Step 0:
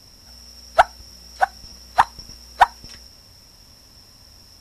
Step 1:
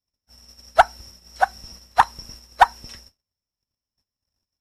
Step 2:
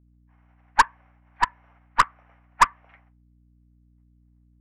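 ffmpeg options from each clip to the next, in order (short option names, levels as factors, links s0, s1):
-af "agate=range=0.00891:threshold=0.00794:ratio=16:detection=peak"
-af "highpass=f=420:t=q:w=0.5412,highpass=f=420:t=q:w=1.307,lowpass=f=2100:t=q:w=0.5176,lowpass=f=2100:t=q:w=0.7071,lowpass=f=2100:t=q:w=1.932,afreqshift=220,aeval=exprs='val(0)+0.002*(sin(2*PI*60*n/s)+sin(2*PI*2*60*n/s)/2+sin(2*PI*3*60*n/s)/3+sin(2*PI*4*60*n/s)/4+sin(2*PI*5*60*n/s)/5)':c=same,aeval=exprs='1.06*(cos(1*acos(clip(val(0)/1.06,-1,1)))-cos(1*PI/2))+0.15*(cos(6*acos(clip(val(0)/1.06,-1,1)))-cos(6*PI/2))+0.188*(cos(8*acos(clip(val(0)/1.06,-1,1)))-cos(8*PI/2))':c=same,volume=0.668"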